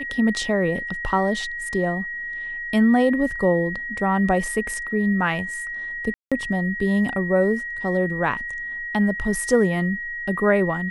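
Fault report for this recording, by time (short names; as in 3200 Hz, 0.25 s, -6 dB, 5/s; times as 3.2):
tone 1900 Hz -28 dBFS
6.14–6.32 gap 0.176 s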